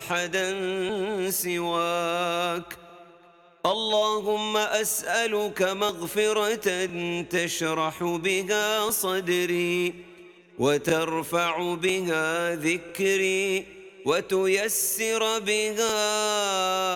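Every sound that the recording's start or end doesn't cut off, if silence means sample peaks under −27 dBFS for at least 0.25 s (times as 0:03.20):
0:03.65–0:09.91
0:10.60–0:13.60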